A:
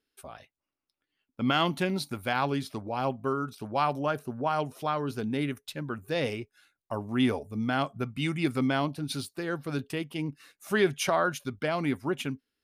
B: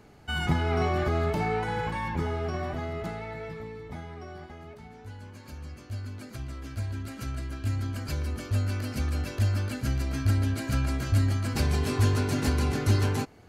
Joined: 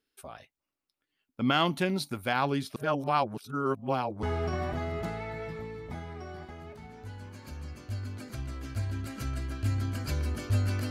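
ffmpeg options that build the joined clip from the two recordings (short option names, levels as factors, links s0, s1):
-filter_complex "[0:a]apad=whole_dur=10.9,atrim=end=10.9,asplit=2[s0][s1];[s0]atrim=end=2.762[s2];[s1]atrim=start=2.758:end=4.232,asetpts=PTS-STARTPTS,areverse[s3];[1:a]atrim=start=2.238:end=8.91[s4];[s2][s3]acrossfade=d=0.004:c1=hsin:c2=hsin[s5];[s5][s4]acrossfade=d=0.004:c1=hsin:c2=hsin"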